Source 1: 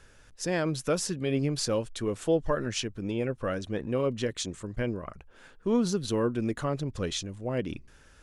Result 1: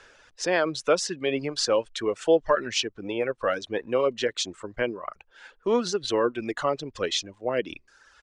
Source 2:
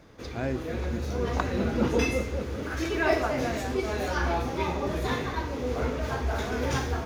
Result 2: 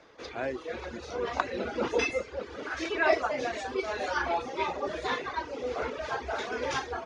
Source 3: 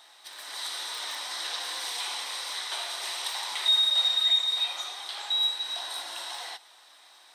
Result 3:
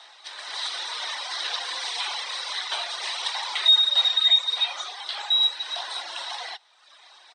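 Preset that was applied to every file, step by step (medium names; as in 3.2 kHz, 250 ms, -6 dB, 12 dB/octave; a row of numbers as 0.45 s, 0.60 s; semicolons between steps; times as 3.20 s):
reverb removal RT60 1 s; resampled via 22.05 kHz; three-band isolator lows -17 dB, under 350 Hz, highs -19 dB, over 6.6 kHz; peak normalisation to -9 dBFS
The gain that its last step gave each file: +8.0 dB, +2.0 dB, +7.0 dB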